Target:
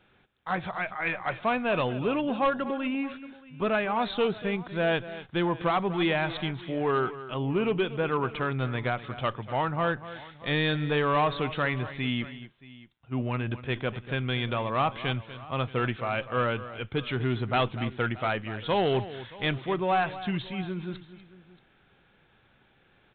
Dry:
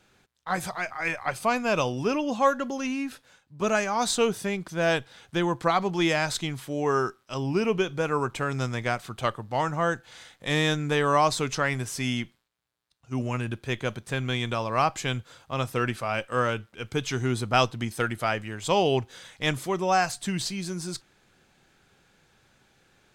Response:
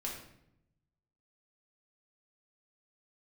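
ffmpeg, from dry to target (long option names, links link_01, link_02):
-af "aresample=8000,asoftclip=type=tanh:threshold=-18dB,aresample=44100,aecho=1:1:242|627:0.188|0.1"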